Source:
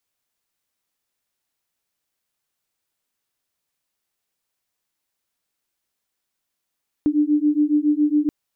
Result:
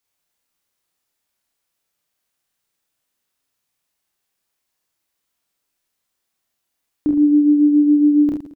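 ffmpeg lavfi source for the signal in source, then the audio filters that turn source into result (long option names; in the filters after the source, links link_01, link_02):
-f lavfi -i "aevalsrc='0.119*(sin(2*PI*294*t)+sin(2*PI*301.2*t))':duration=1.23:sample_rate=44100"
-filter_complex "[0:a]asplit=2[link_01][link_02];[link_02]adelay=48,volume=-5dB[link_03];[link_01][link_03]amix=inputs=2:normalize=0,asplit=2[link_04][link_05];[link_05]aecho=0:1:30|67.5|114.4|173|246.2:0.631|0.398|0.251|0.158|0.1[link_06];[link_04][link_06]amix=inputs=2:normalize=0"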